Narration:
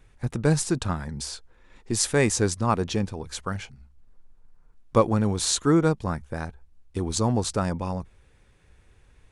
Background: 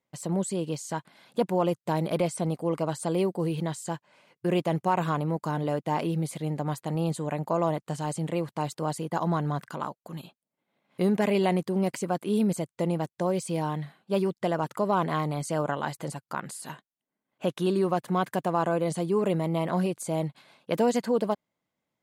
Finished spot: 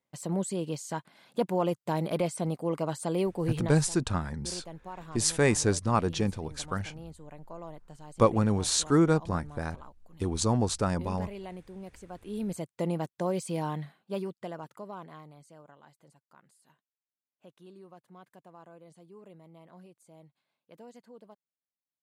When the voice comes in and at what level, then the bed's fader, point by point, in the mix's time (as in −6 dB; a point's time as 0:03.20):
3.25 s, −2.5 dB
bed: 0:03.65 −2.5 dB
0:03.91 −17.5 dB
0:12.03 −17.5 dB
0:12.72 −3 dB
0:13.77 −3 dB
0:15.64 −26 dB